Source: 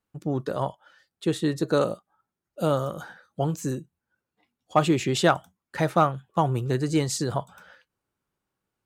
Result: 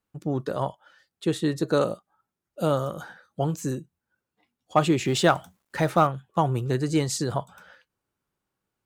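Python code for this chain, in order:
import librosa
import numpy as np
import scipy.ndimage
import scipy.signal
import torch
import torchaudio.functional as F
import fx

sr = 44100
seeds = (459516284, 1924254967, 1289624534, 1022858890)

y = fx.law_mismatch(x, sr, coded='mu', at=(5.05, 6.07))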